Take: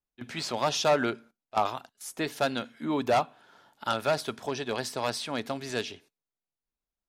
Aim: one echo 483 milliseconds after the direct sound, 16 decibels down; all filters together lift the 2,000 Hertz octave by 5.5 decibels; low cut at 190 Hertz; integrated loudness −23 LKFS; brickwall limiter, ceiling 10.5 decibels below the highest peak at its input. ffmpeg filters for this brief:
ffmpeg -i in.wav -af "highpass=190,equalizer=frequency=2000:width_type=o:gain=7.5,alimiter=limit=-21.5dB:level=0:latency=1,aecho=1:1:483:0.158,volume=11dB" out.wav

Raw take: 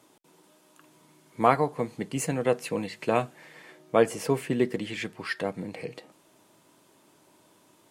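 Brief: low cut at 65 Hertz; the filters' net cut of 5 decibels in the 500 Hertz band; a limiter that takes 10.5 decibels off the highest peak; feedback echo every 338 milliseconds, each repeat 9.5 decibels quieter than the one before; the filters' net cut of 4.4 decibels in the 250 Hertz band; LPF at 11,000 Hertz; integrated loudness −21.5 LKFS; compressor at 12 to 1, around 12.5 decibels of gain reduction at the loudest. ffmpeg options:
ffmpeg -i in.wav -af "highpass=65,lowpass=11000,equalizer=frequency=250:width_type=o:gain=-4,equalizer=frequency=500:width_type=o:gain=-5,acompressor=threshold=-30dB:ratio=12,alimiter=level_in=4dB:limit=-24dB:level=0:latency=1,volume=-4dB,aecho=1:1:338|676|1014|1352:0.335|0.111|0.0365|0.012,volume=18.5dB" out.wav

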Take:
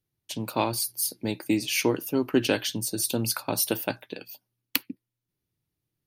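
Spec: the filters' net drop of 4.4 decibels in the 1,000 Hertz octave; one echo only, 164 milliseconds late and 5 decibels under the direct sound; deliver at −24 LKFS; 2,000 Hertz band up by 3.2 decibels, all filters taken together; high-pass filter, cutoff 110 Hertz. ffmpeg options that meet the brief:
ffmpeg -i in.wav -af "highpass=110,equalizer=frequency=1000:width_type=o:gain=-7,equalizer=frequency=2000:width_type=o:gain=6,aecho=1:1:164:0.562,volume=2dB" out.wav

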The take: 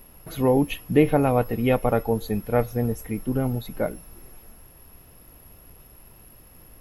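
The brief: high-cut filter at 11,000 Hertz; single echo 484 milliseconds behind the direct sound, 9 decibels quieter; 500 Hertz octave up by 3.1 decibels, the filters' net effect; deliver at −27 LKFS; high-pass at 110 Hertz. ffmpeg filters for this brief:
ffmpeg -i in.wav -af "highpass=110,lowpass=11000,equalizer=frequency=500:width_type=o:gain=3.5,aecho=1:1:484:0.355,volume=-5.5dB" out.wav

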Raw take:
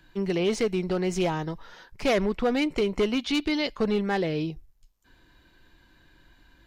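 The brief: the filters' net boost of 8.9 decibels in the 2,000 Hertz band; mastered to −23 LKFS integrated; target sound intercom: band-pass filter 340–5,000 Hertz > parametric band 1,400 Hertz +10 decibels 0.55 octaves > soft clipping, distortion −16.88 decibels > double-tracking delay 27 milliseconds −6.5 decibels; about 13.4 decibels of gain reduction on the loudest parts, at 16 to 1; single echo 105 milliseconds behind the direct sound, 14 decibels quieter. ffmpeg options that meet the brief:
ffmpeg -i in.wav -filter_complex "[0:a]equalizer=frequency=2000:width_type=o:gain=7,acompressor=threshold=-33dB:ratio=16,highpass=340,lowpass=5000,equalizer=frequency=1400:width_type=o:width=0.55:gain=10,aecho=1:1:105:0.2,asoftclip=threshold=-28.5dB,asplit=2[link_01][link_02];[link_02]adelay=27,volume=-6.5dB[link_03];[link_01][link_03]amix=inputs=2:normalize=0,volume=15dB" out.wav

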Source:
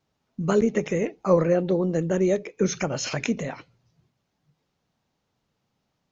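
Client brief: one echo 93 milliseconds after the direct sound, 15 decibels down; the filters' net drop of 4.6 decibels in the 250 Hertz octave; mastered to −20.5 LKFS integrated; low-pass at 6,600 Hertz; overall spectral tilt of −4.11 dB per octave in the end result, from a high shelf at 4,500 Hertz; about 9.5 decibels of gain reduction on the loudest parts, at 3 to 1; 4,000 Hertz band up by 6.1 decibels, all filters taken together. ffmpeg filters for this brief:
ffmpeg -i in.wav -af "lowpass=6600,equalizer=frequency=250:width_type=o:gain=-7.5,equalizer=frequency=4000:width_type=o:gain=5.5,highshelf=frequency=4500:gain=6,acompressor=threshold=-29dB:ratio=3,aecho=1:1:93:0.178,volume=11.5dB" out.wav

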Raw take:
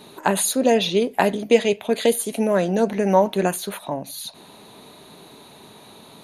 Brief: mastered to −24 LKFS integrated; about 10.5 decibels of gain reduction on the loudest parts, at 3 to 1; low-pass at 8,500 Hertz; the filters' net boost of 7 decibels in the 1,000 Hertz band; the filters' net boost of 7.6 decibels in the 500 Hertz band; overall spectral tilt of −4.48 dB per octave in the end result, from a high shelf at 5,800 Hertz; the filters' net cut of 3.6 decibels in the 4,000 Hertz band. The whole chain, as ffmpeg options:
ffmpeg -i in.wav -af "lowpass=8500,equalizer=frequency=500:width_type=o:gain=7.5,equalizer=frequency=1000:width_type=o:gain=6,equalizer=frequency=4000:width_type=o:gain=-6.5,highshelf=frequency=5800:gain=5.5,acompressor=threshold=-17dB:ratio=3,volume=-3dB" out.wav

